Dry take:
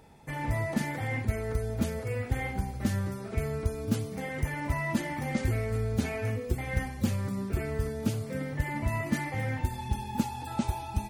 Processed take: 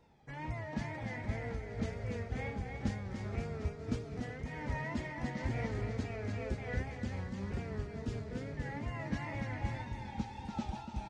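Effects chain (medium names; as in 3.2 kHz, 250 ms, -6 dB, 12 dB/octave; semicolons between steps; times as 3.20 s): low-pass 6.4 kHz 24 dB/octave; wow and flutter 110 cents; on a send: bouncing-ball echo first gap 290 ms, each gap 0.85×, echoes 5; on the sum: random flutter of the level, depth 65%; trim -6 dB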